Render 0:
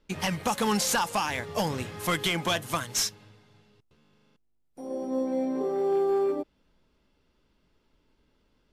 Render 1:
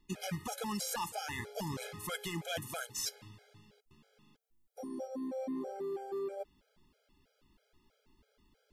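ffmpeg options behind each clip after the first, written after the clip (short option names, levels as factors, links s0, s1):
-af "highshelf=f=8700:g=9,areverse,acompressor=threshold=0.02:ratio=12,areverse,afftfilt=real='re*gt(sin(2*PI*3.1*pts/sr)*(1-2*mod(floor(b*sr/1024/420),2)),0)':imag='im*gt(sin(2*PI*3.1*pts/sr)*(1-2*mod(floor(b*sr/1024/420),2)),0)':win_size=1024:overlap=0.75,volume=1.19"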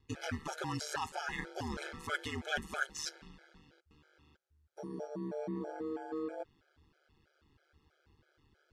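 -af "lowpass=6300,equalizer=f=1500:t=o:w=0.27:g=12,aeval=exprs='val(0)*sin(2*PI*75*n/s)':c=same,volume=1.26"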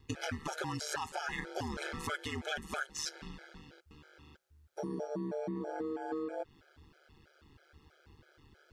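-af "acompressor=threshold=0.00794:ratio=10,volume=2.51"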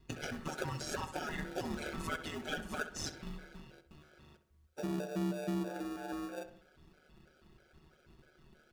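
-filter_complex "[0:a]aecho=1:1:5.4:0.79,asplit=2[s0][s1];[s1]acrusher=samples=42:mix=1:aa=0.000001,volume=0.708[s2];[s0][s2]amix=inputs=2:normalize=0,asplit=2[s3][s4];[s4]adelay=65,lowpass=f=2900:p=1,volume=0.299,asplit=2[s5][s6];[s6]adelay=65,lowpass=f=2900:p=1,volume=0.43,asplit=2[s7][s8];[s8]adelay=65,lowpass=f=2900:p=1,volume=0.43,asplit=2[s9][s10];[s10]adelay=65,lowpass=f=2900:p=1,volume=0.43,asplit=2[s11][s12];[s12]adelay=65,lowpass=f=2900:p=1,volume=0.43[s13];[s3][s5][s7][s9][s11][s13]amix=inputs=6:normalize=0,volume=0.531"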